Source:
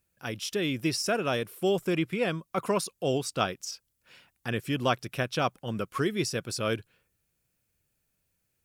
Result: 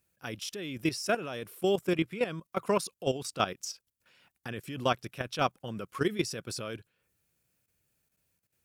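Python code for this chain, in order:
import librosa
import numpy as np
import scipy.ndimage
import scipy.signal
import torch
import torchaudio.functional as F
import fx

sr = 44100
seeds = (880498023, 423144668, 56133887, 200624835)

y = fx.highpass(x, sr, hz=74.0, slope=6)
y = fx.level_steps(y, sr, step_db=13)
y = y * librosa.db_to_amplitude(1.5)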